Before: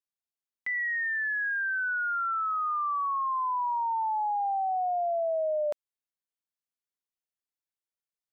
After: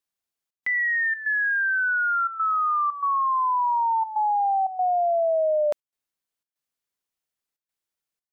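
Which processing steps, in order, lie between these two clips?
trance gate "xxxx.xxxx.xxxx" 119 bpm -12 dB; trim +6.5 dB

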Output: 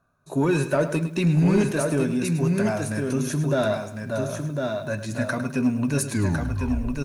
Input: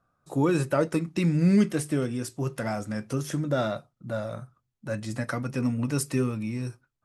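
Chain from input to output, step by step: tape stop on the ending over 1.04 s; rippled EQ curve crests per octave 1.5, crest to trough 8 dB; on a send: delay 1053 ms -5 dB; on the sum: saturation -15 dBFS, distortion -19 dB; bit-crushed delay 105 ms, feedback 35%, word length 9-bit, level -11.5 dB; trim +3 dB

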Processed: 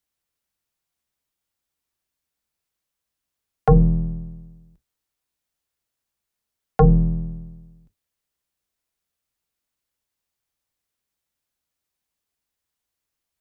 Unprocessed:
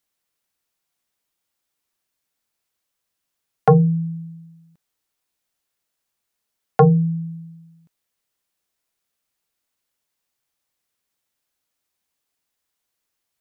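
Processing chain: octave divider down 2 oct, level -1 dB; bass shelf 260 Hz +3.5 dB; trim -4.5 dB

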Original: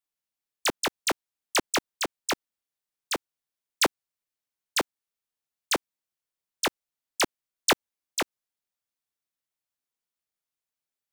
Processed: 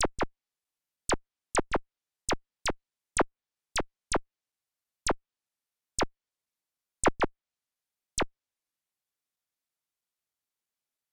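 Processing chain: slices played last to first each 323 ms, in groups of 3; Chebyshev shaper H 2 -14 dB, 6 -15 dB, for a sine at -17.5 dBFS; low-pass that closes with the level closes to 1.5 kHz, closed at -24 dBFS

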